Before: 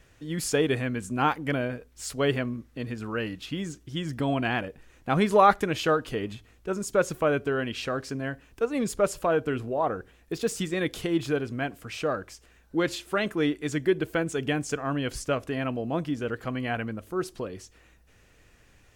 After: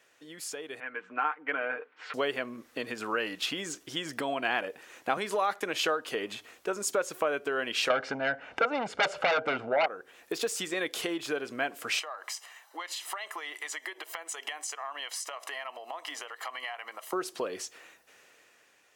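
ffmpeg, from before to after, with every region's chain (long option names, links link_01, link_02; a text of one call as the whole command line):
ffmpeg -i in.wav -filter_complex "[0:a]asettb=1/sr,asplit=3[link_01][link_02][link_03];[link_01]atrim=end=0.804[link_04];[link_02]atrim=start=0.8:end=2.14,asetpts=PTS-STARTPTS,afade=type=in:duration=0.004:curve=qsin,afade=type=out:start_time=1.336:duration=0.004:curve=qsin,highpass=340,equalizer=frequency=350:width_type=q:width=4:gain=-5,equalizer=frequency=610:width_type=q:width=4:gain=-8,equalizer=frequency=1400:width_type=q:width=4:gain=4,lowpass=frequency=2500:width=0.5412,lowpass=frequency=2500:width=1.3066,aecho=1:1:6.6:0.53,atrim=end_sample=59094[link_05];[link_03]atrim=start=2.136[link_06];[link_04][link_05]acrossfade=duration=0.004:curve1=hsin:curve2=qsin[link_07];[link_07][link_06]acrossfade=duration=0.004:curve1=qsin:curve2=hsin,asettb=1/sr,asplit=3[link_08][link_09][link_10];[link_08]atrim=end=5.174[link_11];[link_09]atrim=start=5.17:end=5.79,asetpts=PTS-STARTPTS,afade=type=in:duration=0.004:curve=qsin,afade=type=out:start_time=0.616:duration=0.004:curve=qsin,agate=range=-33dB:threshold=-39dB:ratio=3:release=100:detection=peak,acrossover=split=150|3000[link_12][link_13][link_14];[link_13]acompressor=threshold=-21dB:ratio=2.5:attack=3.2:release=140:knee=2.83:detection=peak[link_15];[link_12][link_15][link_14]amix=inputs=3:normalize=0[link_16];[link_10]atrim=start=5.786[link_17];[link_11][link_16]acrossfade=duration=0.004:curve1=hsin:curve2=qsin[link_18];[link_18][link_17]acrossfade=duration=0.004:curve1=qsin:curve2=hsin,asettb=1/sr,asplit=3[link_19][link_20][link_21];[link_19]atrim=end=7.904[link_22];[link_20]atrim=start=7.9:end=9.86,asetpts=PTS-STARTPTS,afade=type=in:duration=0.004:curve=qsin,afade=type=out:start_time=1.956:duration=0.004:curve=qsin,lowpass=2100,aeval=exprs='0.251*sin(PI/2*3.98*val(0)/0.251)':channel_layout=same,aecho=1:1:1.4:0.54,atrim=end_sample=86436[link_23];[link_21]atrim=start=9.856[link_24];[link_22][link_23]acrossfade=duration=0.004:curve1=hsin:curve2=qsin[link_25];[link_25][link_24]acrossfade=duration=0.004:curve1=qsin:curve2=hsin,asettb=1/sr,asplit=3[link_26][link_27][link_28];[link_26]atrim=end=11.994[link_29];[link_27]atrim=start=11.99:end=17.13,asetpts=PTS-STARTPTS,afade=type=in:duration=0.004:curve=qsin,afade=type=out:start_time=5.136:duration=0.004:curve=qsin,highpass=frequency=530:width=0.5412,highpass=frequency=530:width=1.3066,acompressor=threshold=-43dB:ratio=20:attack=3.2:release=140:knee=1:detection=peak,aecho=1:1:1:0.61,atrim=end_sample=226674[link_30];[link_28]atrim=start=17.126[link_31];[link_29][link_30]acrossfade=duration=0.004:curve1=hsin:curve2=qsin[link_32];[link_32][link_31]acrossfade=duration=0.004:curve1=qsin:curve2=hsin,acompressor=threshold=-34dB:ratio=6,highpass=490,dynaudnorm=framelen=260:gausssize=9:maxgain=12dB,volume=-2dB" out.wav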